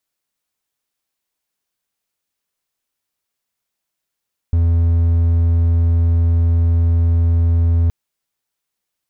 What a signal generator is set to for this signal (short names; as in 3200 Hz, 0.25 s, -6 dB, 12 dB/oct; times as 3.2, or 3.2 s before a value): tone triangle 84 Hz -9 dBFS 3.37 s